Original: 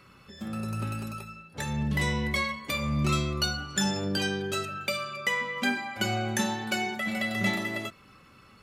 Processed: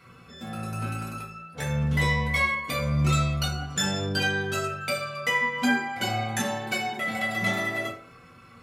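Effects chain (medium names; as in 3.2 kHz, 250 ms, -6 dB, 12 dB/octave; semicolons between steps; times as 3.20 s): comb of notches 210 Hz; reverberation RT60 0.50 s, pre-delay 3 ms, DRR -4 dB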